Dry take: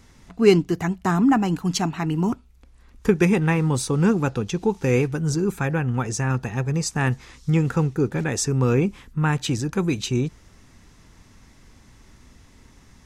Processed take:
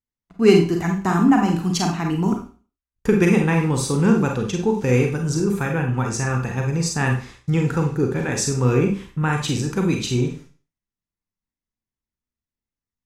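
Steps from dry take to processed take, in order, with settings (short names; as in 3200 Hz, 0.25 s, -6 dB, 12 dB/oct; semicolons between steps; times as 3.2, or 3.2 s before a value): gate -41 dBFS, range -44 dB; Schroeder reverb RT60 0.38 s, combs from 32 ms, DRR 2 dB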